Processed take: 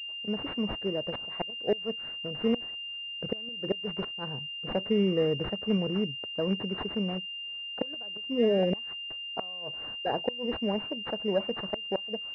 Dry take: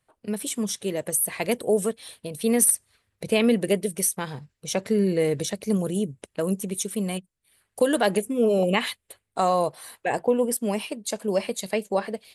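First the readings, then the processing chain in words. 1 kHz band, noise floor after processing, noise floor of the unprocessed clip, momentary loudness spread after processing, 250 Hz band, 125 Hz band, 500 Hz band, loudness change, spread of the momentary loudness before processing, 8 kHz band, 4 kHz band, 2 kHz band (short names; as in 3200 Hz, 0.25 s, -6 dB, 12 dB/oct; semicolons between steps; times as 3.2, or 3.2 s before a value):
-10.0 dB, -39 dBFS, -78 dBFS, 9 LU, -5.5 dB, -4.0 dB, -6.5 dB, -6.5 dB, 10 LU, under -40 dB, n/a, -1.0 dB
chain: flipped gate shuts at -12 dBFS, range -27 dB; pulse-width modulation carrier 2800 Hz; gain -3.5 dB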